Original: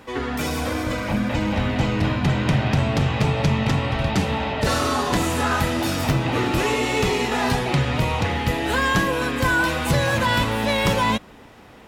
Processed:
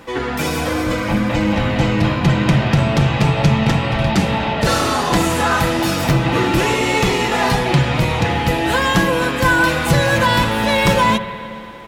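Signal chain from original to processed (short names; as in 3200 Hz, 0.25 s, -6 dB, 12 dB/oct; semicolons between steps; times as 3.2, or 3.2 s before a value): comb 5.9 ms, depth 36%; on a send: reverb RT60 3.0 s, pre-delay 59 ms, DRR 11 dB; on the sum: gain +4.5 dB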